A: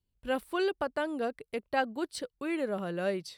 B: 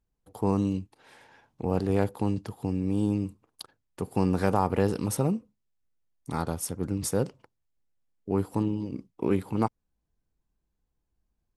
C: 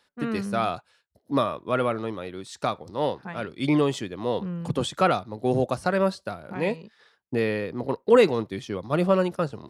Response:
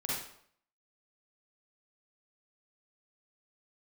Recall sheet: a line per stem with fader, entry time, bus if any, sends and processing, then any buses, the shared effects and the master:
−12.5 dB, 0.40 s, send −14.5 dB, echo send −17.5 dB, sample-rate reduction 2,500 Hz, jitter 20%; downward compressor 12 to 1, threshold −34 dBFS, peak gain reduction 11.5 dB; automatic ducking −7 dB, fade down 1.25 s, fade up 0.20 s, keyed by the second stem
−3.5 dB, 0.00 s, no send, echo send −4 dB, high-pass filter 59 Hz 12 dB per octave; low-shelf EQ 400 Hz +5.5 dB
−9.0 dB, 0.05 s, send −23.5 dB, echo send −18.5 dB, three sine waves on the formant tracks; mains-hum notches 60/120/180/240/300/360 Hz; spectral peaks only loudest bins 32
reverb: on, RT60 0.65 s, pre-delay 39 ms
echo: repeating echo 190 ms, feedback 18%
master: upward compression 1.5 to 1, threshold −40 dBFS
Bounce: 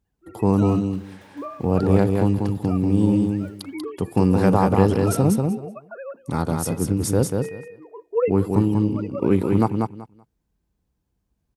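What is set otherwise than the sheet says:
stem B −3.5 dB → +3.5 dB
stem C: send off
master: missing upward compression 1.5 to 1, threshold −40 dBFS

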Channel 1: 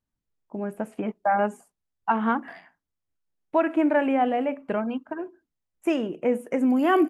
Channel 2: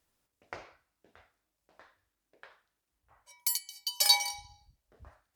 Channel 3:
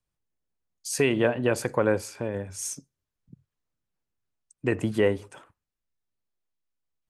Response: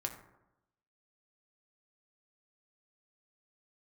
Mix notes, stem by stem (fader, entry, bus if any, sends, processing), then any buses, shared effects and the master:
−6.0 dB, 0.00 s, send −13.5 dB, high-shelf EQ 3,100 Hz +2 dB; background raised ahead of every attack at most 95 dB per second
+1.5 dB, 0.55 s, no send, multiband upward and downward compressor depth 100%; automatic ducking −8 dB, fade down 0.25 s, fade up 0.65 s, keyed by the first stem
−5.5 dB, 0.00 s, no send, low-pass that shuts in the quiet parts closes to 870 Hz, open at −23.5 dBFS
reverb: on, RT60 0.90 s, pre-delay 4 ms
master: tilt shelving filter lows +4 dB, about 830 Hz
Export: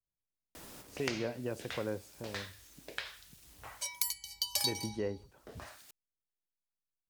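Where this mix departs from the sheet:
stem 1: muted
stem 3 −5.5 dB → −16.0 dB
reverb: off

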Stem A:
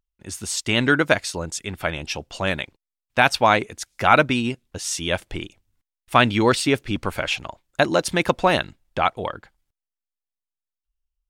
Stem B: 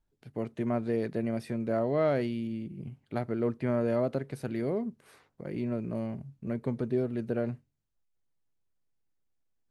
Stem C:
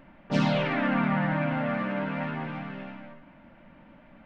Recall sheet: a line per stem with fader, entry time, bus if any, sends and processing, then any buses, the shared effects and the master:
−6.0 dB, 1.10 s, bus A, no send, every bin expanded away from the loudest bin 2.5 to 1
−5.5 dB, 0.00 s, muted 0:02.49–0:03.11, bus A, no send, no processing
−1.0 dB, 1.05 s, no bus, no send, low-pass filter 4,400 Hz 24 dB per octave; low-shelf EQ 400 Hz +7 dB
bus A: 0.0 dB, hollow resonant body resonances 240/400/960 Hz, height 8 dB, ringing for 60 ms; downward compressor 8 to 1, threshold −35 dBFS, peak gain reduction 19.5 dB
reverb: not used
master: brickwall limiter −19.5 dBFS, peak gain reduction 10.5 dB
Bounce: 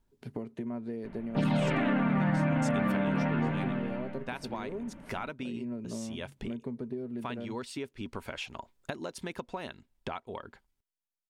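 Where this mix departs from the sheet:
stem A: missing every bin expanded away from the loudest bin 2.5 to 1
stem B −5.5 dB → +5.0 dB

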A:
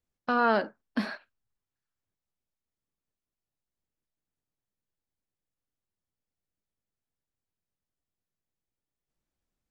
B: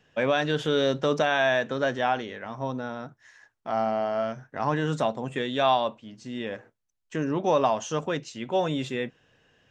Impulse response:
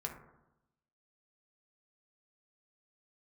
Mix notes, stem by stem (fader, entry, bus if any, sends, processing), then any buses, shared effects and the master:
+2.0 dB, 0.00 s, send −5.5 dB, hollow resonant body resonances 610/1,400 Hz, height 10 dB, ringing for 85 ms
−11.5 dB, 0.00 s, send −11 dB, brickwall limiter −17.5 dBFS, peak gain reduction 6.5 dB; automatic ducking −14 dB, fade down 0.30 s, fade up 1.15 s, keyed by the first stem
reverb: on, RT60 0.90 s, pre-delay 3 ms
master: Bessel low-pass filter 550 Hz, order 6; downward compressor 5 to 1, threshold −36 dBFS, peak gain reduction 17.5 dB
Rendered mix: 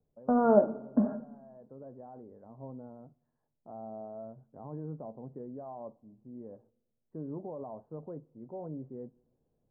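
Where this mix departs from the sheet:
stem B: send −11 dB → −20.5 dB
master: missing downward compressor 5 to 1, threshold −36 dBFS, peak gain reduction 17.5 dB

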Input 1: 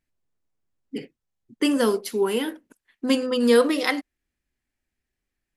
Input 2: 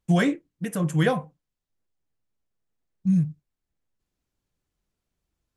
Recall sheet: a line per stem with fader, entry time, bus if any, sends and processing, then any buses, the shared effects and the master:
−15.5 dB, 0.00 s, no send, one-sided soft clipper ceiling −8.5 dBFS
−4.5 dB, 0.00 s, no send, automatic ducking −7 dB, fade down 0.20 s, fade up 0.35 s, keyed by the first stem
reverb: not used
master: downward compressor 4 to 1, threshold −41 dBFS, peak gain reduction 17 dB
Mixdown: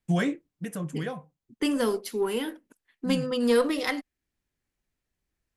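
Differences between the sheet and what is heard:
stem 1 −15.5 dB → −4.0 dB
master: missing downward compressor 4 to 1, threshold −41 dBFS, peak gain reduction 17 dB

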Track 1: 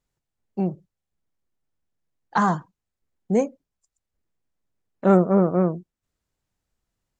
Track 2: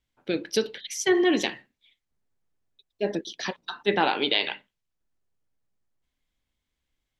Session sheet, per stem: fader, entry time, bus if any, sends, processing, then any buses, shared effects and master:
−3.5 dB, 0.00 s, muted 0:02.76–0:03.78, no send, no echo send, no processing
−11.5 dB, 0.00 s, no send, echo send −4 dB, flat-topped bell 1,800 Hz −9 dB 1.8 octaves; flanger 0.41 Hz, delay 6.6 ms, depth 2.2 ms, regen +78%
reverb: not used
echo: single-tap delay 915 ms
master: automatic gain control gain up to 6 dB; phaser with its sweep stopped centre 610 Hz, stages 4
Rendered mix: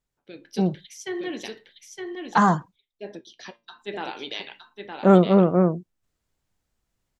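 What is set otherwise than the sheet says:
stem 2: missing flat-topped bell 1,800 Hz −9 dB 1.8 octaves
master: missing phaser with its sweep stopped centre 610 Hz, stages 4

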